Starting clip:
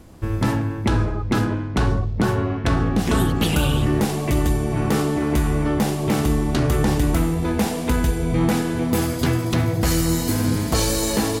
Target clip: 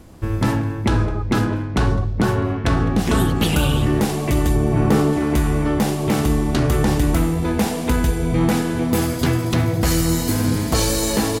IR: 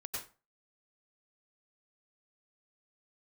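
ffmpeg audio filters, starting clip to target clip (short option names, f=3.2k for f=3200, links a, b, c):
-filter_complex "[0:a]asettb=1/sr,asplit=3[a][b][c];[a]atrim=end=4.554[d];[b]atrim=start=4.55:end=5.13,asetpts=PTS-STARTPTS,afade=t=in:d=0.004:c=qsin,afade=t=out:st=0.576:d=0.004:c=qsin,tiltshelf=f=1.4k:g=3.5[e];[c]atrim=start=5.126[f];[d][e]acrossfade=d=0.004:c1=hsin:c2=qsin[g];[g][f]acrossfade=d=0.004:c1=qsin:c2=hsin,aecho=1:1:208:0.0708,volume=1.5dB"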